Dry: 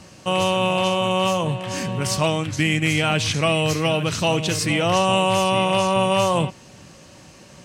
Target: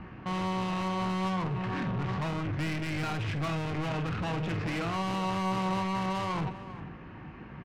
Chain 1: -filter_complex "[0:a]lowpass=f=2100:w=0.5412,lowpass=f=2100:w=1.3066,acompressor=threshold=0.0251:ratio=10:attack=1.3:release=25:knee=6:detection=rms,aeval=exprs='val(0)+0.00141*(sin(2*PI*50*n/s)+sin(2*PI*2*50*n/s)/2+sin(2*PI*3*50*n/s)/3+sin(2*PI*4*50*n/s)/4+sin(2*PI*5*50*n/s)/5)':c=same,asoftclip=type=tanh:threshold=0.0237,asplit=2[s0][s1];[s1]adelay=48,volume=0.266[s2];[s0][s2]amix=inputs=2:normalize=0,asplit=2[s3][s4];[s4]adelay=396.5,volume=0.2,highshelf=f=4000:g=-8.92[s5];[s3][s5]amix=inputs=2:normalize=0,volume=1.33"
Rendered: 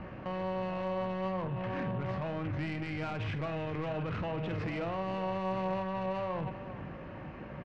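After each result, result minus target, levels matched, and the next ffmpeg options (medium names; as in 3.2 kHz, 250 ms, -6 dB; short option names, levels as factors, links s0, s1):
compression: peak gain reduction +12 dB; 500 Hz band +6.5 dB
-filter_complex "[0:a]lowpass=f=2100:w=0.5412,lowpass=f=2100:w=1.3066,acompressor=threshold=0.0944:ratio=10:attack=1.3:release=25:knee=6:detection=rms,aeval=exprs='val(0)+0.00141*(sin(2*PI*50*n/s)+sin(2*PI*2*50*n/s)/2+sin(2*PI*3*50*n/s)/3+sin(2*PI*4*50*n/s)/4+sin(2*PI*5*50*n/s)/5)':c=same,asoftclip=type=tanh:threshold=0.0237,asplit=2[s0][s1];[s1]adelay=48,volume=0.266[s2];[s0][s2]amix=inputs=2:normalize=0,asplit=2[s3][s4];[s4]adelay=396.5,volume=0.2,highshelf=f=4000:g=-8.92[s5];[s3][s5]amix=inputs=2:normalize=0,volume=1.33"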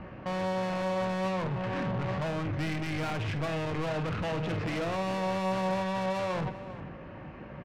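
500 Hz band +5.5 dB
-filter_complex "[0:a]lowpass=f=2100:w=0.5412,lowpass=f=2100:w=1.3066,equalizer=f=570:t=o:w=0.34:g=-14.5,acompressor=threshold=0.0944:ratio=10:attack=1.3:release=25:knee=6:detection=rms,aeval=exprs='val(0)+0.00141*(sin(2*PI*50*n/s)+sin(2*PI*2*50*n/s)/2+sin(2*PI*3*50*n/s)/3+sin(2*PI*4*50*n/s)/4+sin(2*PI*5*50*n/s)/5)':c=same,asoftclip=type=tanh:threshold=0.0237,asplit=2[s0][s1];[s1]adelay=48,volume=0.266[s2];[s0][s2]amix=inputs=2:normalize=0,asplit=2[s3][s4];[s4]adelay=396.5,volume=0.2,highshelf=f=4000:g=-8.92[s5];[s3][s5]amix=inputs=2:normalize=0,volume=1.33"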